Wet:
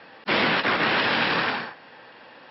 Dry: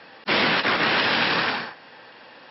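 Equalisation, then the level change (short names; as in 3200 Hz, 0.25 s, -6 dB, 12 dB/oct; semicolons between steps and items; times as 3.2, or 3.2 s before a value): air absorption 120 m; 0.0 dB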